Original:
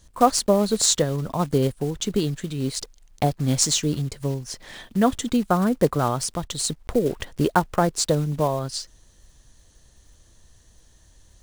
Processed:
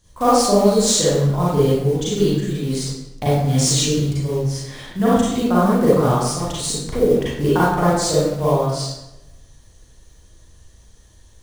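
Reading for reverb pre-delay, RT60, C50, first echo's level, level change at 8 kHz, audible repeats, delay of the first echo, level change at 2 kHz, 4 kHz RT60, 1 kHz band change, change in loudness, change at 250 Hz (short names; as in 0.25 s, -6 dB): 33 ms, 0.95 s, -4.0 dB, none, +2.5 dB, none, none, +4.0 dB, 0.65 s, +4.0 dB, +5.0 dB, +5.0 dB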